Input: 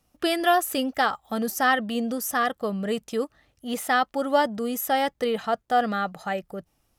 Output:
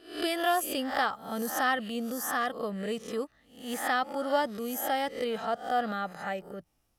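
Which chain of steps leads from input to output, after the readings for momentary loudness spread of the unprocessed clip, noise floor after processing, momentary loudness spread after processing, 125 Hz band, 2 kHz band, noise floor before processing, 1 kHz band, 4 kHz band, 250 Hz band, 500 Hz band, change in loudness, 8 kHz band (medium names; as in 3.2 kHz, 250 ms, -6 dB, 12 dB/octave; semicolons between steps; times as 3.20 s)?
9 LU, -71 dBFS, 9 LU, no reading, -5.0 dB, -71 dBFS, -6.0 dB, -4.5 dB, -6.5 dB, -5.5 dB, -5.5 dB, -4.0 dB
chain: reverse spectral sustain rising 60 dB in 0.47 s; trim -7 dB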